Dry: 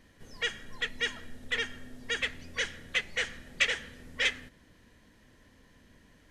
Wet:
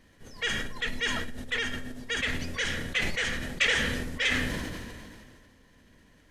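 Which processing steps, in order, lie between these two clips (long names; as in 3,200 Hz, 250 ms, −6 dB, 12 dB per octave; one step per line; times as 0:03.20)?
level that may fall only so fast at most 27 dB per second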